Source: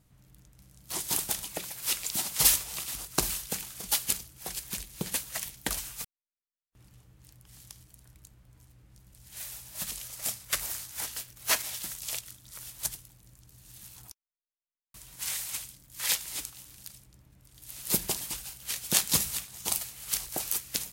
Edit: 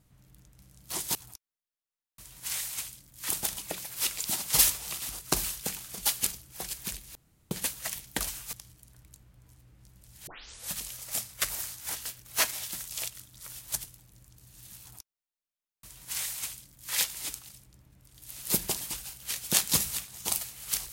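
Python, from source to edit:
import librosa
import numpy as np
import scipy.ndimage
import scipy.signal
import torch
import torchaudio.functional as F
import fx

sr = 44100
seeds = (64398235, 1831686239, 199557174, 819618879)

y = fx.edit(x, sr, fx.insert_room_tone(at_s=5.01, length_s=0.36),
    fx.cut(start_s=6.03, length_s=1.61),
    fx.tape_start(start_s=9.38, length_s=0.45),
    fx.duplicate(start_s=13.91, length_s=2.14, to_s=1.15),
    fx.cut(start_s=16.6, length_s=0.29), tone=tone)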